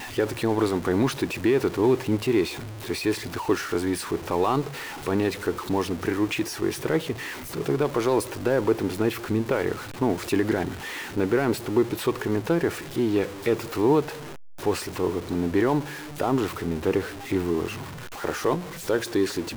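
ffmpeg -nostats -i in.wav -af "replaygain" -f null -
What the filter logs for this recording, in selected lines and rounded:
track_gain = +5.7 dB
track_peak = 0.201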